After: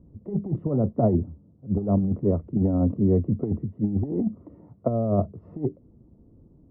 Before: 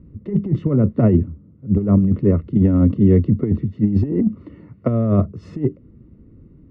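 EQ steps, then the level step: synth low-pass 770 Hz, resonance Q 4.9; -8.5 dB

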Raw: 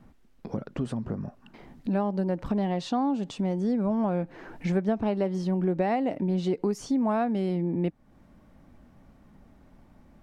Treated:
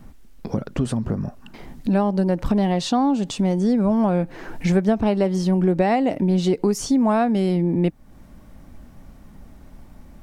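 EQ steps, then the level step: low shelf 73 Hz +9.5 dB; high shelf 4900 Hz +11 dB; +6.5 dB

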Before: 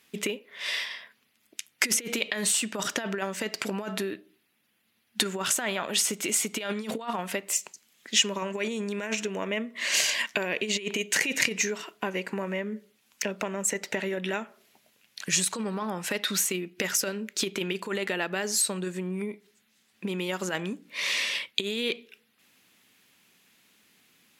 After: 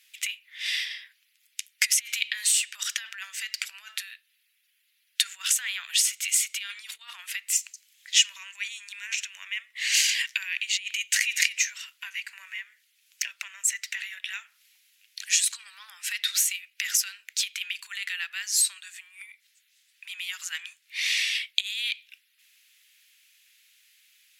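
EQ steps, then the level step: inverse Chebyshev high-pass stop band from 320 Hz, stop band 80 dB; +3.0 dB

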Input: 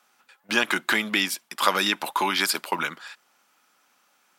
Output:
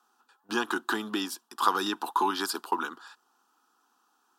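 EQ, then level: high shelf 3800 Hz -9 dB; fixed phaser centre 580 Hz, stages 6; 0.0 dB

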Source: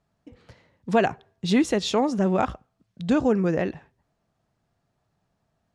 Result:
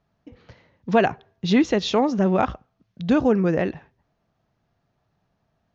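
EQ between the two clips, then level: elliptic low-pass 6500 Hz, stop band 40 dB; air absorption 59 m; +3.5 dB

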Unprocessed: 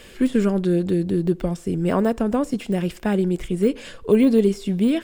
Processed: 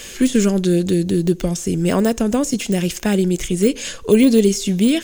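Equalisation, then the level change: high shelf 2300 Hz +10.5 dB; dynamic EQ 1100 Hz, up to -6 dB, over -35 dBFS, Q 0.85; bell 6400 Hz +11 dB 0.25 oct; +4.0 dB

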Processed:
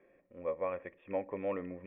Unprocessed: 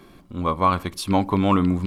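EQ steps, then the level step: vocal tract filter e; steep low-pass 3300 Hz 96 dB/oct; low shelf 230 Hz -11.5 dB; 0.0 dB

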